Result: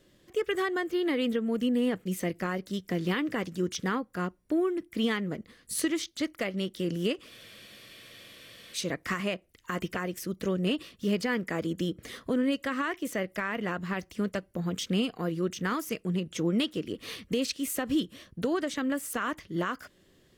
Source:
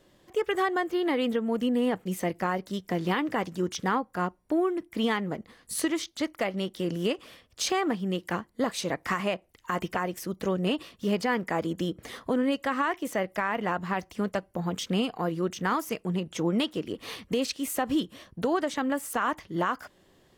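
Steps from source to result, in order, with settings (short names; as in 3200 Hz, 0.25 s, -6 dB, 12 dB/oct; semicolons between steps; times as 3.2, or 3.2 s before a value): bell 850 Hz -11 dB 0.81 oct; spectral freeze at 7.31, 1.43 s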